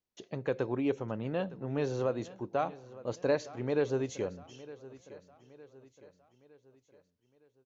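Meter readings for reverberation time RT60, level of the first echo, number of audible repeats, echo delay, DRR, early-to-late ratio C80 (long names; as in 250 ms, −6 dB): no reverb audible, −18.0 dB, 3, 911 ms, no reverb audible, no reverb audible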